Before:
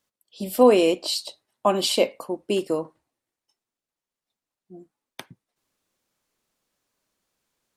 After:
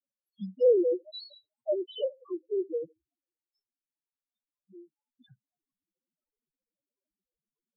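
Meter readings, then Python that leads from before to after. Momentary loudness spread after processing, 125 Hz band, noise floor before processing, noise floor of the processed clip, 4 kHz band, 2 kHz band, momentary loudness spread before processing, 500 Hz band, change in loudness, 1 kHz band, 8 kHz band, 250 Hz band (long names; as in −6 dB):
20 LU, below −10 dB, below −85 dBFS, below −85 dBFS, −17.5 dB, below −40 dB, 18 LU, −6.0 dB, −7.0 dB, below −30 dB, below −40 dB, −11.0 dB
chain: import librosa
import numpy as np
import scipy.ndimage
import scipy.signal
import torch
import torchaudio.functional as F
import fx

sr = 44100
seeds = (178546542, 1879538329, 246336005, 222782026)

y = fx.env_lowpass_down(x, sr, base_hz=1600.0, full_db=-17.0)
y = fx.spec_topn(y, sr, count=1)
y = fx.dispersion(y, sr, late='highs', ms=64.0, hz=640.0)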